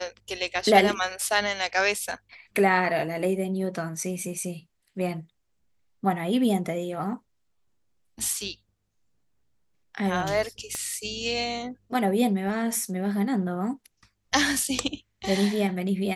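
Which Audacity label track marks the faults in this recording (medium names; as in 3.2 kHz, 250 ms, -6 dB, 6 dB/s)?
10.750000	10.750000	pop -17 dBFS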